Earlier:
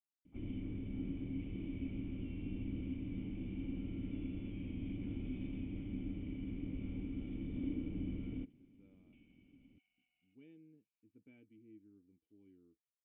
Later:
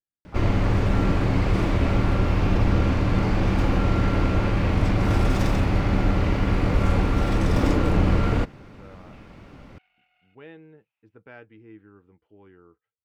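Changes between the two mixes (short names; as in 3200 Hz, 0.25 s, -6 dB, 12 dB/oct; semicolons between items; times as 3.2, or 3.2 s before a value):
speech +4.5 dB; first sound +12.0 dB; master: remove vocal tract filter i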